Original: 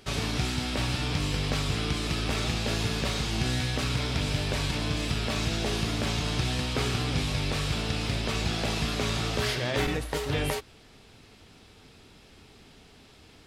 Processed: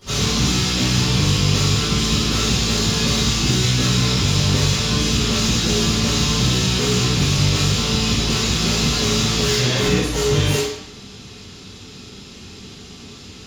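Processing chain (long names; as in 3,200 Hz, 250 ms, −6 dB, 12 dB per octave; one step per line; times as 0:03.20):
high-shelf EQ 2,400 Hz +8 dB
hard clipping −28.5 dBFS, distortion −8 dB
convolution reverb RT60 0.70 s, pre-delay 11 ms, DRR −14 dB
level −5 dB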